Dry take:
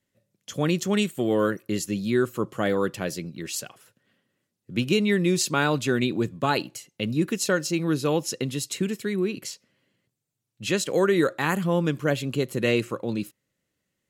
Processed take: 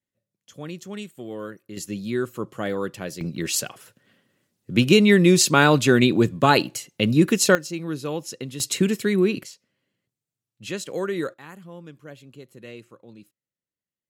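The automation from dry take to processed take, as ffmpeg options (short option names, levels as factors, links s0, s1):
-af "asetnsamples=n=441:p=0,asendcmd='1.77 volume volume -3dB;3.21 volume volume 7dB;7.55 volume volume -5dB;8.6 volume volume 6dB;9.43 volume volume -6dB;11.34 volume volume -18dB',volume=0.266"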